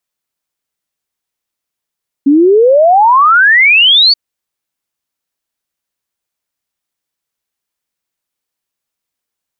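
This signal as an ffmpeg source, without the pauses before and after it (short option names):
-f lavfi -i "aevalsrc='0.668*clip(min(t,1.88-t)/0.01,0,1)*sin(2*PI*270*1.88/log(4600/270)*(exp(log(4600/270)*t/1.88)-1))':d=1.88:s=44100"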